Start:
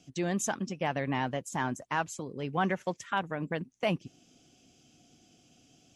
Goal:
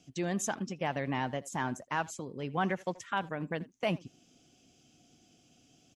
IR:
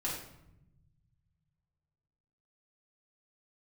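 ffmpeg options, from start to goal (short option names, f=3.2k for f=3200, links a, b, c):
-filter_complex "[0:a]asplit=2[a][b];[b]adelay=80,highpass=300,lowpass=3.4k,asoftclip=type=hard:threshold=-26dB,volume=-19dB[c];[a][c]amix=inputs=2:normalize=0,volume=-2dB"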